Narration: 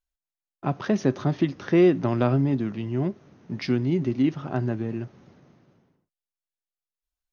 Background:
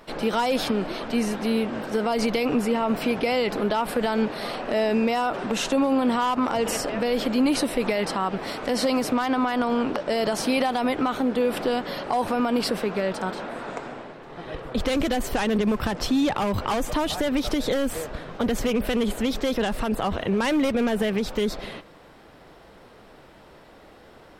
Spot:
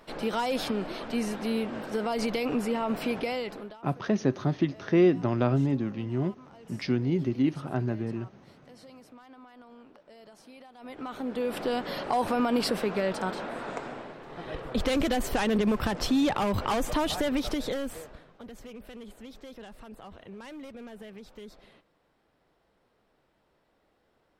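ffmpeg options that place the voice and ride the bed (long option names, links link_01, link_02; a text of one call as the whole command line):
ffmpeg -i stem1.wav -i stem2.wav -filter_complex "[0:a]adelay=3200,volume=-3dB[link_01];[1:a]volume=20dB,afade=type=out:start_time=3.15:duration=0.63:silence=0.0749894,afade=type=in:start_time=10.76:duration=1.24:silence=0.0530884,afade=type=out:start_time=17.14:duration=1.19:silence=0.11885[link_02];[link_01][link_02]amix=inputs=2:normalize=0" out.wav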